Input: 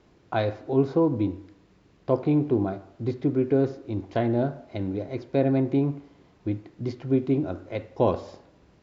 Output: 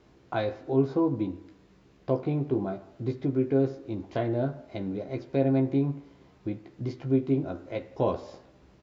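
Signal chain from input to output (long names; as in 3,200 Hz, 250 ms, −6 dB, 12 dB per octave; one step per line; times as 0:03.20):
in parallel at −2 dB: downward compressor, threshold −34 dBFS, peak gain reduction 16.5 dB
on the sum: double-tracking delay 15 ms −5.5 dB
level −6 dB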